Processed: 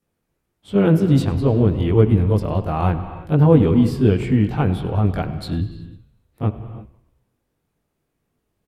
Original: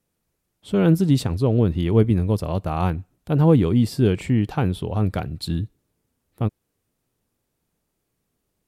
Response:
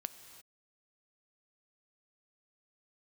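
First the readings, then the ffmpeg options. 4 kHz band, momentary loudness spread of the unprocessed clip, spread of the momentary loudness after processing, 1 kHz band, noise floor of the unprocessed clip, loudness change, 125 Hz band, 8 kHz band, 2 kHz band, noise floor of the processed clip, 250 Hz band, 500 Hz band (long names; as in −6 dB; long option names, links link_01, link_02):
−1.5 dB, 11 LU, 12 LU, +3.0 dB, −76 dBFS, +3.0 dB, +3.0 dB, can't be measured, +2.0 dB, −75 dBFS, +2.5 dB, +3.5 dB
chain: -filter_complex "[0:a]asplit=6[link_01][link_02][link_03][link_04][link_05][link_06];[link_02]adelay=99,afreqshift=-45,volume=-20dB[link_07];[link_03]adelay=198,afreqshift=-90,volume=-24.4dB[link_08];[link_04]adelay=297,afreqshift=-135,volume=-28.9dB[link_09];[link_05]adelay=396,afreqshift=-180,volume=-33.3dB[link_10];[link_06]adelay=495,afreqshift=-225,volume=-37.7dB[link_11];[link_01][link_07][link_08][link_09][link_10][link_11]amix=inputs=6:normalize=0,asplit=2[link_12][link_13];[1:a]atrim=start_sample=2205,lowpass=2700,adelay=20[link_14];[link_13][link_14]afir=irnorm=-1:irlink=0,volume=9.5dB[link_15];[link_12][link_15]amix=inputs=2:normalize=0,volume=-5dB"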